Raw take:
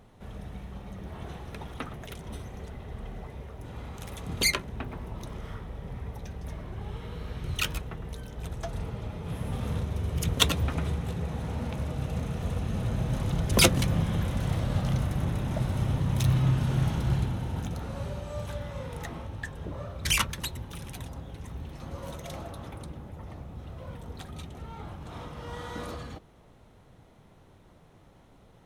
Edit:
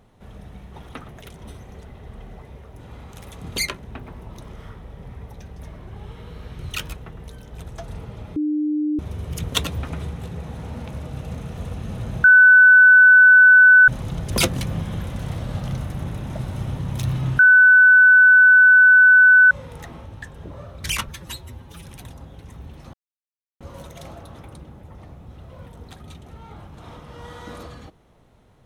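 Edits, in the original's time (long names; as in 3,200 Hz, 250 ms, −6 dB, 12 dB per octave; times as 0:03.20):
0:00.74–0:01.59: remove
0:09.21–0:09.84: beep over 301 Hz −19 dBFS
0:13.09: insert tone 1,500 Hz −6.5 dBFS 1.64 s
0:16.60–0:18.72: beep over 1,500 Hz −7.5 dBFS
0:20.29–0:20.80: time-stretch 1.5×
0:21.89: splice in silence 0.67 s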